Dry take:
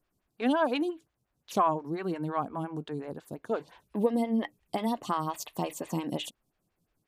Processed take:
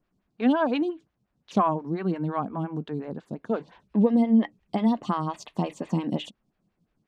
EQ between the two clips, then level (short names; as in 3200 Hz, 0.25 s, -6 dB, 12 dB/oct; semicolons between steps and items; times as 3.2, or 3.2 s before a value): air absorption 110 m; bell 200 Hz +9 dB 0.73 oct; +2.0 dB